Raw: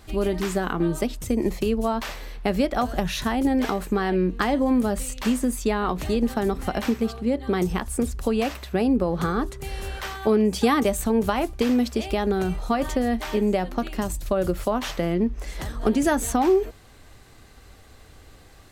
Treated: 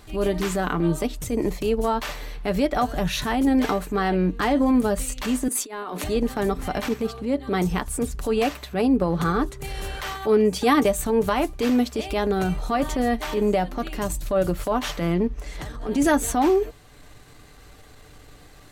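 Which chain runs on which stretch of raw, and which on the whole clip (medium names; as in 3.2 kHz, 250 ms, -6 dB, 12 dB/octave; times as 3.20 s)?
5.48–6.04 s: high-pass 240 Hz 24 dB/octave + peaking EQ 10 kHz +6.5 dB 0.48 oct + compressor with a negative ratio -30 dBFS, ratio -0.5
15.40–15.89 s: treble shelf 11 kHz -8.5 dB + compression 2.5:1, threshold -32 dBFS
whole clip: band-stop 5.1 kHz, Q 28; comb 6.8 ms, depth 37%; transient shaper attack -8 dB, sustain -3 dB; trim +2.5 dB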